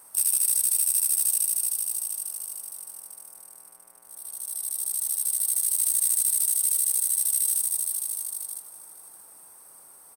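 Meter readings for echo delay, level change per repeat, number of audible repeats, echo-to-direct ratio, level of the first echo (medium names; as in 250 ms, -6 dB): 628 ms, -10.0 dB, 2, -16.5 dB, -17.0 dB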